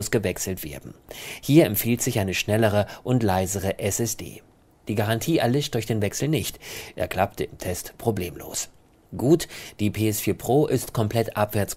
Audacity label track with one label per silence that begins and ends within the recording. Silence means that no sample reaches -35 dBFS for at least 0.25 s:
4.370000	4.870000	silence
8.650000	9.130000	silence